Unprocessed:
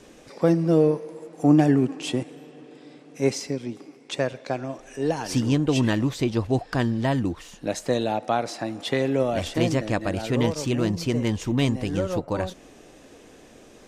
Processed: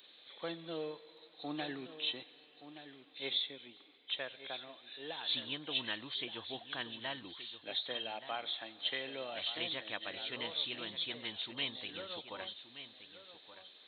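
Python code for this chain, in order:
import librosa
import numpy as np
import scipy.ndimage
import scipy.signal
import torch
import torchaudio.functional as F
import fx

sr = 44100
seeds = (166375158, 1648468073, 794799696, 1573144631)

y = fx.freq_compress(x, sr, knee_hz=3000.0, ratio=4.0)
y = np.diff(y, prepend=0.0)
y = y + 10.0 ** (-12.5 / 20.0) * np.pad(y, (int(1174 * sr / 1000.0), 0))[:len(y)]
y = F.gain(torch.from_numpy(y), 2.0).numpy()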